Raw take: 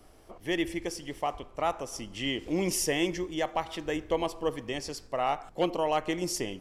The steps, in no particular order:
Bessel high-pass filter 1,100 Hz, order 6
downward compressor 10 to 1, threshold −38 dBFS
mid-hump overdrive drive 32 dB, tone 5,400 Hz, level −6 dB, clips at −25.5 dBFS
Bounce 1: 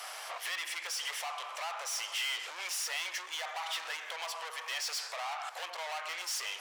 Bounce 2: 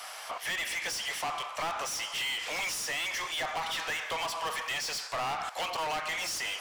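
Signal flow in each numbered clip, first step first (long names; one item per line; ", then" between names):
downward compressor, then mid-hump overdrive, then Bessel high-pass filter
Bessel high-pass filter, then downward compressor, then mid-hump overdrive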